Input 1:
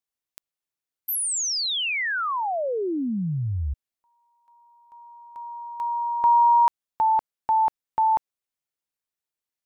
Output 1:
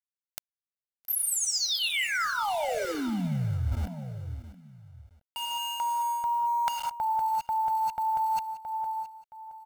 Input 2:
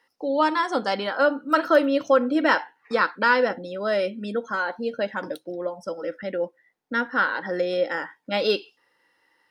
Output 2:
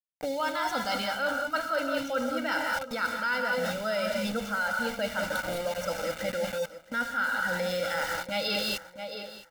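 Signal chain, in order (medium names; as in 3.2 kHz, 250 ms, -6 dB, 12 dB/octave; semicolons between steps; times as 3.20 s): in parallel at -2 dB: peak limiter -18 dBFS; on the sum: treble shelf 4.5 kHz +3.5 dB; gated-style reverb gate 230 ms rising, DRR 4 dB; small samples zeroed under -29 dBFS; comb 1.4 ms, depth 77%; feedback delay 670 ms, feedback 24%, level -18.5 dB; dynamic bell 550 Hz, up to -6 dB, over -27 dBFS, Q 0.88; reverse; compression 6:1, threshold -24 dBFS; reverse; trim -2.5 dB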